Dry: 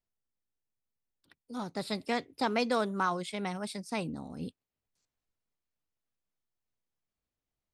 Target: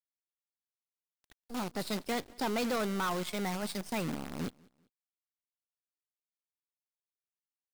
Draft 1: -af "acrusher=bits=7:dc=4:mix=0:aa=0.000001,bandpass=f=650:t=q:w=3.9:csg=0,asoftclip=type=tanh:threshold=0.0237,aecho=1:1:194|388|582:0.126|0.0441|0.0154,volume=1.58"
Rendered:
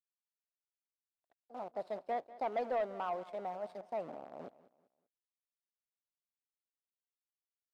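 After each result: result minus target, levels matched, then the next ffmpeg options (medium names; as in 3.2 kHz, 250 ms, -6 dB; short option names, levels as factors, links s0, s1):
echo-to-direct +8 dB; 500 Hz band +3.5 dB
-af "acrusher=bits=7:dc=4:mix=0:aa=0.000001,bandpass=f=650:t=q:w=3.9:csg=0,asoftclip=type=tanh:threshold=0.0237,aecho=1:1:194|388:0.0501|0.0175,volume=1.58"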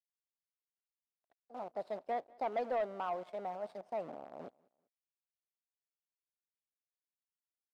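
500 Hz band +3.5 dB
-af "acrusher=bits=7:dc=4:mix=0:aa=0.000001,asoftclip=type=tanh:threshold=0.0237,aecho=1:1:194|388:0.0501|0.0175,volume=1.58"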